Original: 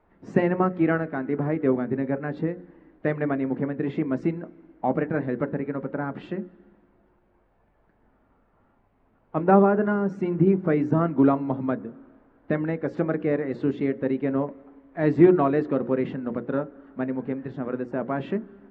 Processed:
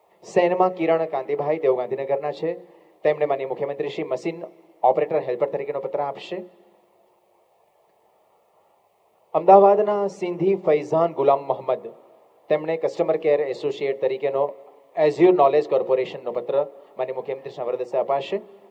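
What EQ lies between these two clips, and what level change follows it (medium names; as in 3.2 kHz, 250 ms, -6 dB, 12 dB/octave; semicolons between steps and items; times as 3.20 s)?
high-pass 320 Hz 12 dB/octave; treble shelf 2.8 kHz +11 dB; static phaser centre 630 Hz, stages 4; +9.0 dB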